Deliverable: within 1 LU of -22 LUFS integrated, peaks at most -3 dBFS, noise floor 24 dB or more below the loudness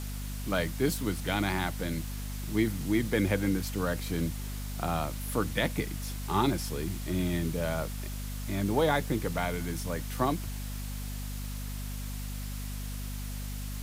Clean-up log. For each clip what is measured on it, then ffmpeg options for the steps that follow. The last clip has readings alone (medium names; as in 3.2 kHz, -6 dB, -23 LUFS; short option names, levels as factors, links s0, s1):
hum 50 Hz; highest harmonic 250 Hz; hum level -34 dBFS; noise floor -37 dBFS; noise floor target -56 dBFS; loudness -32.0 LUFS; peak level -13.0 dBFS; loudness target -22.0 LUFS
-> -af "bandreject=f=50:t=h:w=4,bandreject=f=100:t=h:w=4,bandreject=f=150:t=h:w=4,bandreject=f=200:t=h:w=4,bandreject=f=250:t=h:w=4"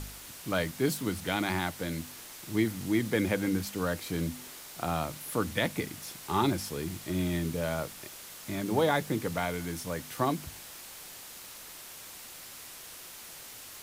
hum not found; noise floor -47 dBFS; noise floor target -56 dBFS
-> -af "afftdn=nr=9:nf=-47"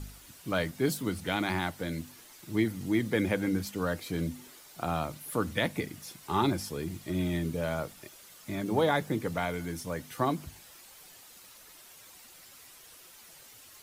noise floor -53 dBFS; noise floor target -56 dBFS
-> -af "afftdn=nr=6:nf=-53"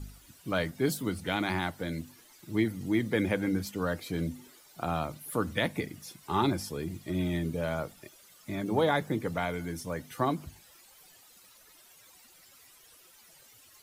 noise floor -58 dBFS; loudness -32.0 LUFS; peak level -14.0 dBFS; loudness target -22.0 LUFS
-> -af "volume=3.16"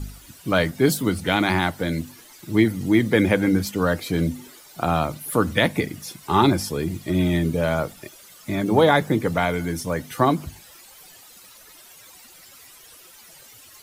loudness -22.0 LUFS; peak level -4.0 dBFS; noise floor -48 dBFS